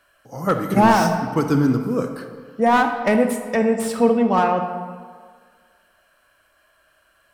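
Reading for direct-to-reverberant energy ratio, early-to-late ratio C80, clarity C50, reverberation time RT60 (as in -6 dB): 6.0 dB, 8.5 dB, 7.0 dB, 1.8 s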